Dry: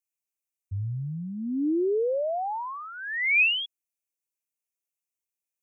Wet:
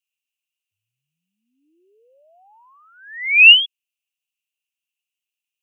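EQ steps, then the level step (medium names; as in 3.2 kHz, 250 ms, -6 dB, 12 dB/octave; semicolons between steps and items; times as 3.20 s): resonant high-pass 2.8 kHz, resonance Q 11; -1.0 dB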